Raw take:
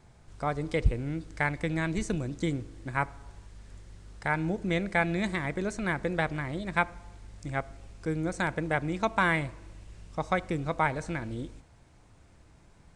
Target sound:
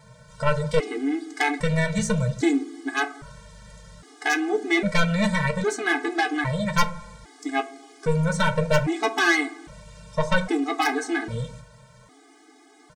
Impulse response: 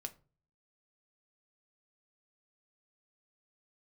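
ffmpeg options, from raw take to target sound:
-filter_complex "[0:a]highpass=57,equalizer=f=72:t=o:w=3:g=-9.5,bandreject=f=2.6k:w=7.7,aecho=1:1:6.6:0.37,aeval=exprs='0.251*(cos(1*acos(clip(val(0)/0.251,-1,1)))-cos(1*PI/2))+0.126*(cos(5*acos(clip(val(0)/0.251,-1,1)))-cos(5*PI/2))+0.0282*(cos(8*acos(clip(val(0)/0.251,-1,1)))-cos(8*PI/2))':c=same[a];[1:a]atrim=start_sample=2205[b];[a][b]afir=irnorm=-1:irlink=0,afftfilt=real='re*gt(sin(2*PI*0.62*pts/sr)*(1-2*mod(floor(b*sr/1024/220),2)),0)':imag='im*gt(sin(2*PI*0.62*pts/sr)*(1-2*mod(floor(b*sr/1024/220),2)),0)':win_size=1024:overlap=0.75,volume=6dB"

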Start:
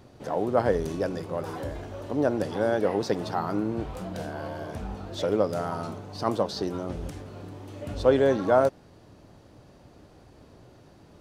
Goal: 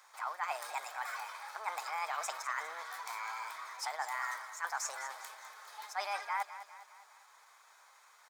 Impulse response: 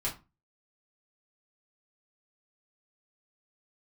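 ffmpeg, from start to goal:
-af "highpass=f=710:w=0.5412,highpass=f=710:w=1.3066,bandreject=f=1.9k:w=6.3,areverse,acompressor=threshold=-33dB:ratio=6,areverse,asetrate=48091,aresample=44100,atempo=0.917004,aecho=1:1:274|548|822|1096|1370:0.224|0.114|0.0582|0.0297|0.0151,asetrate=59535,aresample=44100"

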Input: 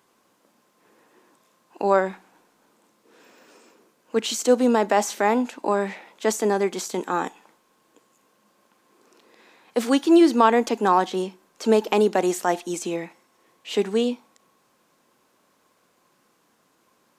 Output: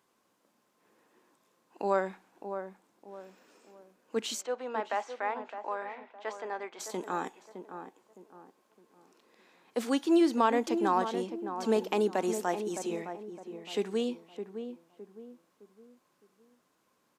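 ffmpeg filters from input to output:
-filter_complex "[0:a]asplit=3[a][b][c];[a]afade=t=out:st=4.4:d=0.02[d];[b]highpass=710,lowpass=2.5k,afade=t=in:st=4.4:d=0.02,afade=t=out:st=6.79:d=0.02[e];[c]afade=t=in:st=6.79:d=0.02[f];[d][e][f]amix=inputs=3:normalize=0,asplit=2[g][h];[h]adelay=612,lowpass=f=1.1k:p=1,volume=-8dB,asplit=2[i][j];[j]adelay=612,lowpass=f=1.1k:p=1,volume=0.39,asplit=2[k][l];[l]adelay=612,lowpass=f=1.1k:p=1,volume=0.39,asplit=2[m][n];[n]adelay=612,lowpass=f=1.1k:p=1,volume=0.39[o];[g][i][k][m][o]amix=inputs=5:normalize=0,volume=-9dB"

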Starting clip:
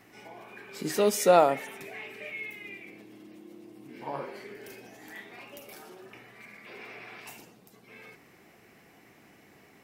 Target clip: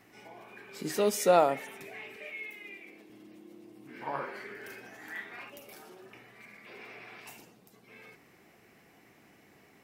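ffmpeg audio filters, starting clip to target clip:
-filter_complex "[0:a]asettb=1/sr,asplit=3[a][b][c];[a]atrim=end=2.164[d];[b]atrim=start=2.16:end=3.1,asetpts=PTS-STARTPTS,afade=t=in:d=0.004:c=qsin,afade=t=out:st=0.936:d=0.004:c=qsin,highpass=240[e];[c]atrim=start=3.096[f];[d][e]acrossfade=d=0.004:c1=hsin:c2=qsin[g];[g][f]acrossfade=d=0.004:c1=qsin:c2=hsin,asettb=1/sr,asplit=3[h][i][j];[h]atrim=end=3.874[k];[i]atrim=start=3.87:end=5.5,asetpts=PTS-STARTPTS,afade=t=in:d=0.004:c=qsin,afade=t=out:st=1.626:d=0.004:c=qsin,equalizer=f=1.5k:t=o:w=1.1:g=11[l];[j]atrim=start=5.496[m];[k][l]acrossfade=d=0.004:c1=hsin:c2=qsin[n];[n][m]acrossfade=d=0.004:c1=qsin:c2=hsin,volume=-3dB"

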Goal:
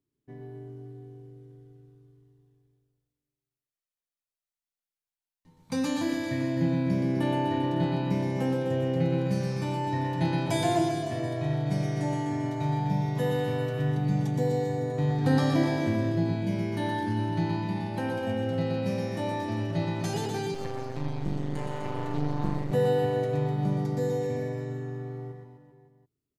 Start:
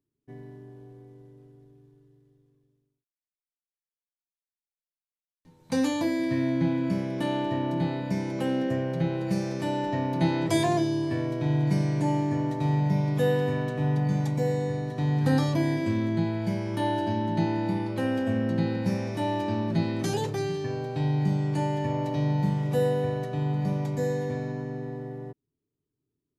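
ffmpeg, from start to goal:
-filter_complex "[0:a]aphaser=in_gain=1:out_gain=1:delay=1.6:decay=0.29:speed=0.13:type=sinusoidal,aecho=1:1:120|252|397.2|556.9|732.6:0.631|0.398|0.251|0.158|0.1,asettb=1/sr,asplit=3[a][b][c];[a]atrim=end=20.544[d];[b]atrim=start=20.54:end=22.72,asetpts=PTS-STARTPTS,afade=t=in:d=0.004:c=qsin,afade=t=out:st=2.176:d=0.004:c=qsin,aeval=exprs='max(val(0),0)':c=same[e];[c]atrim=start=22.716[f];[d][e]acrossfade=d=0.004:c1=hsin:c2=qsin[g];[g][f]acrossfade=d=0.004:c1=qsin:c2=hsin,volume=-3.5dB"

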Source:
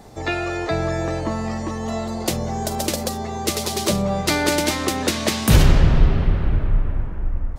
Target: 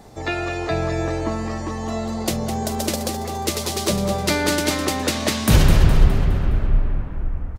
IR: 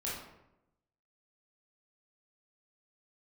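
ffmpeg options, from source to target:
-af "aecho=1:1:207|414|621|828|1035:0.355|0.167|0.0784|0.0368|0.0173,volume=-1dB"

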